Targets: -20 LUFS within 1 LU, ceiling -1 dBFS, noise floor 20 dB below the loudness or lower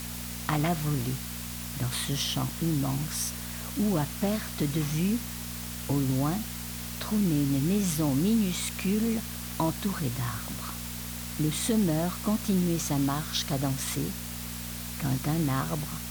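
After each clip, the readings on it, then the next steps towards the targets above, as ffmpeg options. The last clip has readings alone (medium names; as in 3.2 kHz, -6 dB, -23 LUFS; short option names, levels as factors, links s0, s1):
hum 60 Hz; highest harmonic 240 Hz; hum level -37 dBFS; noise floor -37 dBFS; noise floor target -50 dBFS; loudness -29.5 LUFS; peak level -12.5 dBFS; loudness target -20.0 LUFS
-> -af "bandreject=f=60:t=h:w=4,bandreject=f=120:t=h:w=4,bandreject=f=180:t=h:w=4,bandreject=f=240:t=h:w=4"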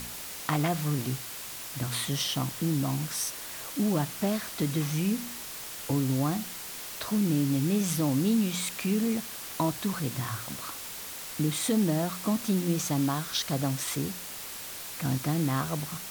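hum not found; noise floor -40 dBFS; noise floor target -50 dBFS
-> -af "afftdn=nr=10:nf=-40"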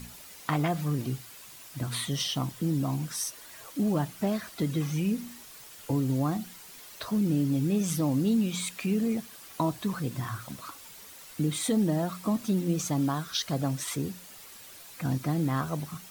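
noise floor -48 dBFS; noise floor target -50 dBFS
-> -af "afftdn=nr=6:nf=-48"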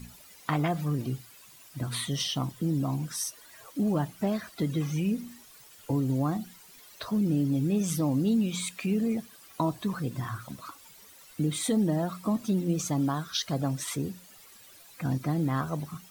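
noise floor -53 dBFS; loudness -30.0 LUFS; peak level -13.0 dBFS; loudness target -20.0 LUFS
-> -af "volume=3.16"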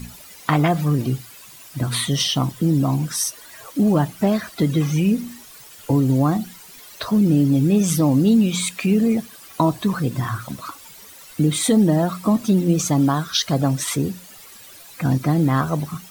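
loudness -20.0 LUFS; peak level -3.0 dBFS; noise floor -43 dBFS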